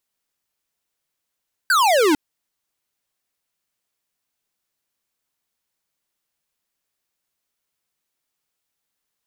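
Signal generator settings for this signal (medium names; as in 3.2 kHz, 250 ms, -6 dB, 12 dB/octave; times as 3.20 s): laser zap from 1.6 kHz, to 280 Hz, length 0.45 s square, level -15.5 dB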